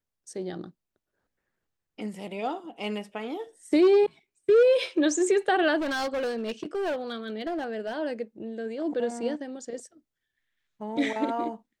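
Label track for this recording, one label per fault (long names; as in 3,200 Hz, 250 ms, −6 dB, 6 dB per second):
5.780000	7.950000	clipping −26 dBFS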